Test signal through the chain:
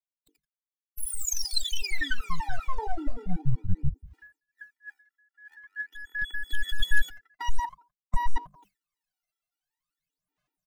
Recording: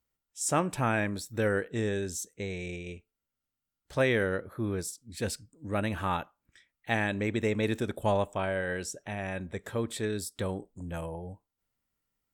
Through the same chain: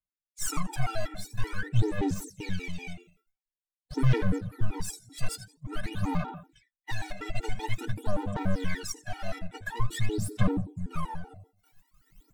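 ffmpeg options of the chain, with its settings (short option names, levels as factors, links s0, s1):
-filter_complex "[0:a]bandreject=f=50:t=h:w=6,bandreject=f=100:t=h:w=6,bandreject=f=150:t=h:w=6,bandreject=f=200:t=h:w=6,bandreject=f=250:t=h:w=6,bandreject=f=300:t=h:w=6,bandreject=f=350:t=h:w=6,bandreject=f=400:t=h:w=6,bandreject=f=450:t=h:w=6,bandreject=f=500:t=h:w=6,aecho=1:1:85|170|255:0.141|0.0424|0.0127,acrossover=split=4200[s0][s1];[s0]alimiter=limit=0.075:level=0:latency=1:release=202[s2];[s2][s1]amix=inputs=2:normalize=0,highshelf=f=4300:g=-6.5,areverse,acompressor=mode=upward:threshold=0.00447:ratio=2.5,areverse,aeval=exprs='clip(val(0),-1,0.00668)':c=same,equalizer=f=530:t=o:w=0.25:g=-11,aecho=1:1:6.6:0.8,aphaser=in_gain=1:out_gain=1:delay=1.5:decay=0.8:speed=0.48:type=sinusoidal,acrossover=split=270|3000[s3][s4][s5];[s4]acompressor=threshold=0.0251:ratio=6[s6];[s3][s6][s5]amix=inputs=3:normalize=0,agate=range=0.0224:threshold=0.00447:ratio=3:detection=peak,afftfilt=real='re*gt(sin(2*PI*5.2*pts/sr)*(1-2*mod(floor(b*sr/1024/250),2)),0)':imag='im*gt(sin(2*PI*5.2*pts/sr)*(1-2*mod(floor(b*sr/1024/250),2)),0)':win_size=1024:overlap=0.75,volume=1.41"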